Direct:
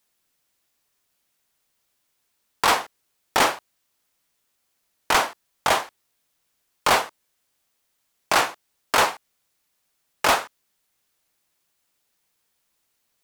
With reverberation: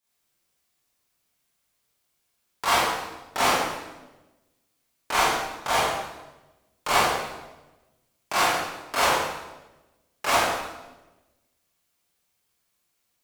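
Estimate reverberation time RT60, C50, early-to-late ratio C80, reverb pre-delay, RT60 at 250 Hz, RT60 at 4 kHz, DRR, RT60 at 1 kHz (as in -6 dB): 1.1 s, -2.0 dB, 1.5 dB, 24 ms, 1.3 s, 0.90 s, -10.0 dB, 1.0 s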